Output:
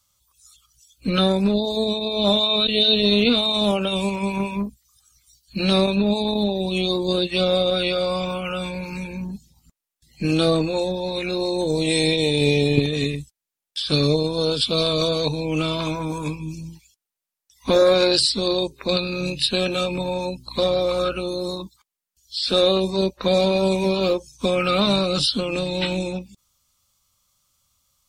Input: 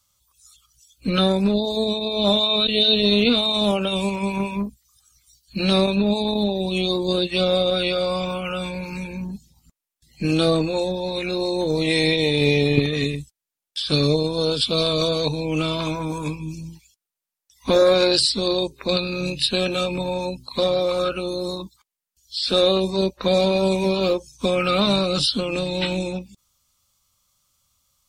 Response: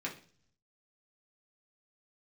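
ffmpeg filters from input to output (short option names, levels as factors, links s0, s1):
-filter_complex "[0:a]asettb=1/sr,asplit=3[s0][s1][s2];[s0]atrim=end=11.584[s3];[s1]atrim=start=11.58:end=13.03,asetpts=PTS-STARTPTS,afade=t=in:d=0.004:c=qsin,afade=t=out:st=1.446:d=0.004:c=qsin,equalizer=f=1250:t=o:w=0.33:g=-8,equalizer=f=2000:t=o:w=0.33:g=-7,equalizer=f=8000:t=o:w=0.33:g=10[s4];[s2]atrim=start=13.026[s5];[s3][s4]acrossfade=d=0.004:c1=hsin:c2=qsin[s6];[s6][s5]acrossfade=d=0.004:c1=qsin:c2=hsin,asettb=1/sr,asplit=3[s7][s8][s9];[s7]atrim=end=20.464[s10];[s8]atrim=start=20.46:end=21.23,asetpts=PTS-STARTPTS,afade=t=in:d=0.004:c=qsin,afade=t=out:st=0.766:d=0.004:c=qsin,aeval=exprs='val(0)+0.00631*(sin(2*PI*60*n/s)+sin(2*PI*2*60*n/s)/2+sin(2*PI*3*60*n/s)/3+sin(2*PI*4*60*n/s)/4+sin(2*PI*5*60*n/s)/5)':c=same[s11];[s9]atrim=start=21.226[s12];[s10][s11]acrossfade=d=0.004:c1=hsin:c2=qsin[s13];[s13][s12]acrossfade=d=0.004:c1=qsin:c2=hsin"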